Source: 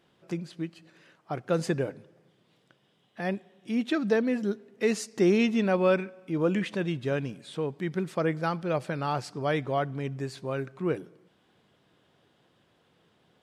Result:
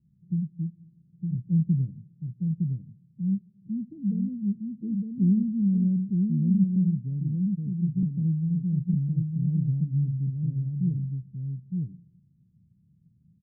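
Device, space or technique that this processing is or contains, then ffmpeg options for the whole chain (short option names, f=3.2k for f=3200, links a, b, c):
the neighbour's flat through the wall: -filter_complex "[0:a]lowpass=f=160:w=0.5412,lowpass=f=160:w=1.3066,equalizer=f=190:t=o:w=0.51:g=7,lowshelf=f=390:g=10,asettb=1/sr,asplit=3[a][b][c];[a]atrim=end=6.764[d];[b]atrim=start=6.76:end=8.03,asetpts=PTS-STARTPTS,afade=t=in:d=0.004:c=qsin,afade=t=out:st=1.266:d=0.004:c=qsin,highpass=160[e];[c]atrim=start=8.026[f];[d][e]acrossfade=d=0.004:c1=hsin:c2=qsin[g];[g][f]acrossfade=d=0.004:c1=qsin:c2=hsin,aecho=1:1:911:0.668"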